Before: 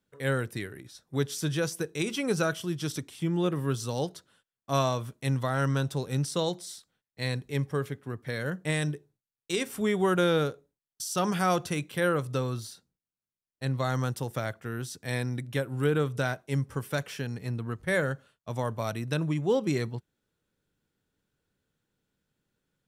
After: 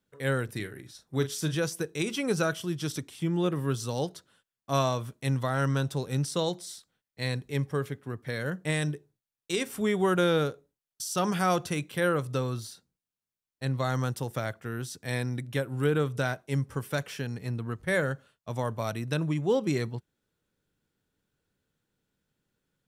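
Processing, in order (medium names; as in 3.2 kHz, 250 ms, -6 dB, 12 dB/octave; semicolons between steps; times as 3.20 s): 0.45–1.55 s: doubling 38 ms -10.5 dB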